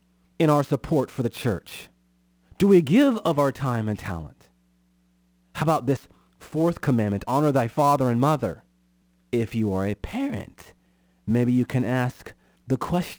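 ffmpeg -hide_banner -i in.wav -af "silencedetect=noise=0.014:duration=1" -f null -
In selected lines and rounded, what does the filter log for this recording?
silence_start: 4.28
silence_end: 5.55 | silence_duration: 1.27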